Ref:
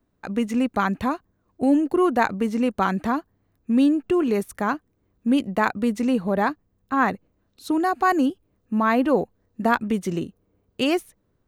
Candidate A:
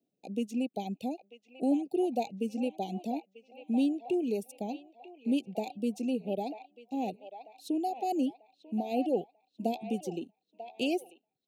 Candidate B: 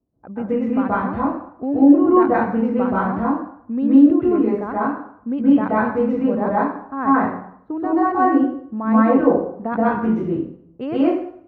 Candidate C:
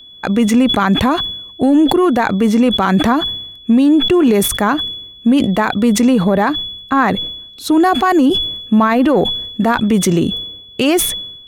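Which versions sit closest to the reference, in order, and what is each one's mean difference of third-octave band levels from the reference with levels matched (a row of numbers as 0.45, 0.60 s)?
C, A, B; 4.5, 6.0, 11.0 dB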